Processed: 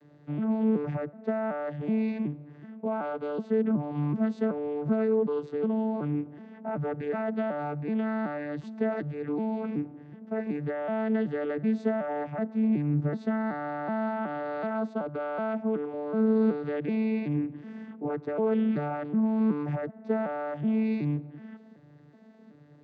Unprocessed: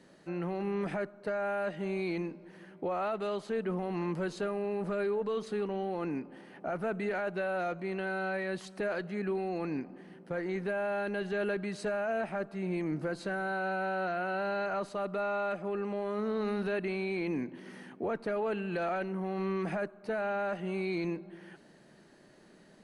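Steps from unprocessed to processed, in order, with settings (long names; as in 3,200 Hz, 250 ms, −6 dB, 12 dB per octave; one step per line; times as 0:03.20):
vocoder with an arpeggio as carrier bare fifth, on D3, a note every 375 ms
high-shelf EQ 5,500 Hz −7.5 dB
level +6 dB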